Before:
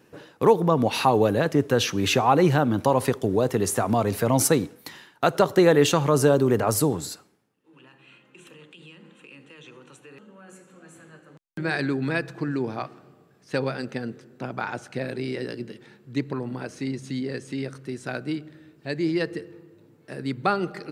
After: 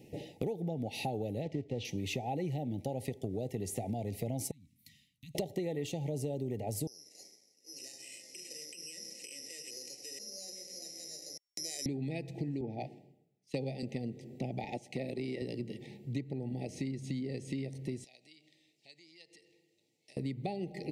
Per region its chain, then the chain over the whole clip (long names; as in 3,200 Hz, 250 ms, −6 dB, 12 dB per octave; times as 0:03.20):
0:01.43–0:01.85: one scale factor per block 5 bits + low-pass filter 3,700 Hz
0:04.51–0:05.35: elliptic band-stop filter 260–1,100 Hz + guitar amp tone stack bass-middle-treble 6-0-2 + downward compressor 3 to 1, threshold −50 dBFS
0:06.87–0:11.86: downward compressor 3 to 1, threshold −48 dBFS + bad sample-rate conversion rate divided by 8×, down filtered, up zero stuff + loudspeaker in its box 430–9,300 Hz, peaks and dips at 560 Hz +4 dB, 850 Hz −10 dB, 2,000 Hz +5 dB, 3,500 Hz −9 dB, 5,100 Hz +4 dB, 7,400 Hz +3 dB
0:12.61–0:13.83: high-pass filter 99 Hz 24 dB per octave + multiband upward and downward expander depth 100%
0:14.64–0:15.42: high-pass filter 160 Hz + transient designer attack −3 dB, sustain −7 dB
0:18.04–0:20.17: downward compressor 8 to 1, threshold −37 dBFS + resonant band-pass 5,500 Hz, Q 1.1
whole clip: Chebyshev band-stop filter 850–1,900 Hz, order 5; low-shelf EQ 220 Hz +8 dB; downward compressor 8 to 1, threshold −34 dBFS